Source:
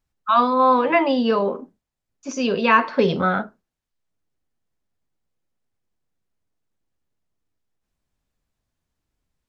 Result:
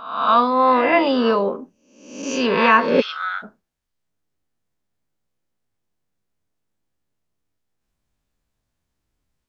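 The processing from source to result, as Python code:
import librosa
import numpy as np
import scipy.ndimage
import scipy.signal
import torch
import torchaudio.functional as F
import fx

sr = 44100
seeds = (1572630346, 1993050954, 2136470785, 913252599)

y = fx.spec_swells(x, sr, rise_s=0.74)
y = fx.highpass(y, sr, hz=1400.0, slope=24, at=(3.0, 3.42), fade=0.02)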